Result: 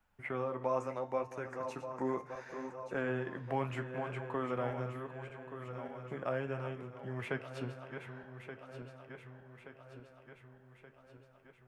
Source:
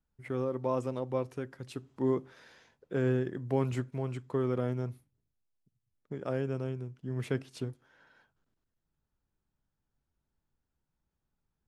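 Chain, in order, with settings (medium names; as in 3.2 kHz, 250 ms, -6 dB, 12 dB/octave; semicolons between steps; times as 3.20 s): backward echo that repeats 588 ms, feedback 64%, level -11 dB; high-order bell 1.3 kHz +11 dB 2.7 oct; de-hum 150.2 Hz, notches 40; flange 0.71 Hz, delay 9.5 ms, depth 6.7 ms, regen -52%; 0.65–2.97 s: graphic EQ with 31 bands 125 Hz -4 dB, 3.15 kHz -11 dB, 6.3 kHz +10 dB; three bands compressed up and down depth 40%; trim -3.5 dB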